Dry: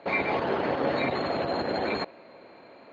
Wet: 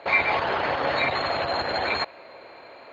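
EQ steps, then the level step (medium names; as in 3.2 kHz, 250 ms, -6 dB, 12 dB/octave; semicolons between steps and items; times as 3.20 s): peaking EQ 210 Hz -13.5 dB 1.7 oct; band-stop 6.1 kHz, Q 30; dynamic bell 410 Hz, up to -6 dB, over -45 dBFS, Q 1.1; +8.0 dB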